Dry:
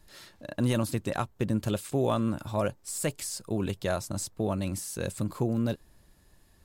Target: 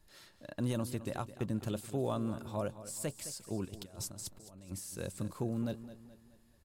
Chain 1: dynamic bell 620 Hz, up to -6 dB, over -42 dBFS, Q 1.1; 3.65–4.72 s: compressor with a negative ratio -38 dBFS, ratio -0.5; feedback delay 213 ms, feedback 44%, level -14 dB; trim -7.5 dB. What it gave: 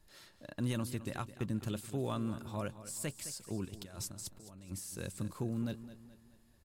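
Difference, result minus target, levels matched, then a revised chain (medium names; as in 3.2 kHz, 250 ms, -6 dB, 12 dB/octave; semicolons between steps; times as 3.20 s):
2 kHz band +3.0 dB
dynamic bell 2.1 kHz, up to -6 dB, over -42 dBFS, Q 1.1; 3.65–4.72 s: compressor with a negative ratio -38 dBFS, ratio -0.5; feedback delay 213 ms, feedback 44%, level -14 dB; trim -7.5 dB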